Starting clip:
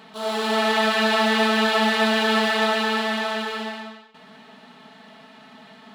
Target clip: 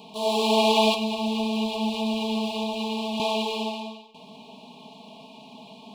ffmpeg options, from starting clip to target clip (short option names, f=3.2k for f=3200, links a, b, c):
-filter_complex "[0:a]asettb=1/sr,asplit=3[a][b][c];[a]atrim=end=0.944[d];[b]atrim=start=0.94:end=3.2,asetpts=PTS-STARTPTS,afade=t=in:d=0.004:c=qsin,afade=t=out:st=2.256:d=0.004:c=qsin,acrossover=split=210[e][f];[f]acompressor=threshold=-28dB:ratio=10[g];[e][g]amix=inputs=2:normalize=0[h];[c]atrim=start=3.196[i];[d][h]acrossfade=d=0.004:c1=hsin:c2=qsin[j];[j][i]acrossfade=d=0.004:c1=qsin:c2=hsin,asuperstop=centerf=1600:order=20:qfactor=1.3,volume=2dB"